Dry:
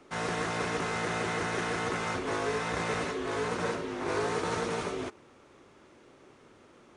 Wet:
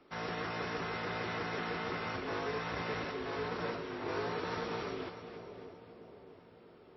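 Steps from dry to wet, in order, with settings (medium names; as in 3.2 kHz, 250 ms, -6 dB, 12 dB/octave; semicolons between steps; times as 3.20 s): two-band feedback delay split 830 Hz, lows 650 ms, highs 276 ms, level -10 dB; trim -6 dB; MP3 24 kbps 16 kHz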